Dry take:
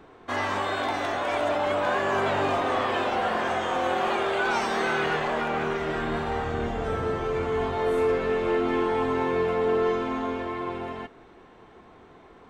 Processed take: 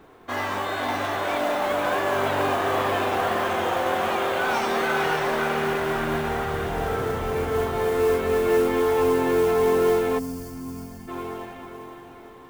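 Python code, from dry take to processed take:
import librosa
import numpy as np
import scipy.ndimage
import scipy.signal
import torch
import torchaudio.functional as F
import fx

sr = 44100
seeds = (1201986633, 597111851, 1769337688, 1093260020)

y = fx.echo_diffused(x, sr, ms=533, feedback_pct=44, wet_db=-4.0)
y = fx.mod_noise(y, sr, seeds[0], snr_db=22)
y = fx.spec_box(y, sr, start_s=10.19, length_s=0.89, low_hz=290.0, high_hz=4300.0, gain_db=-16)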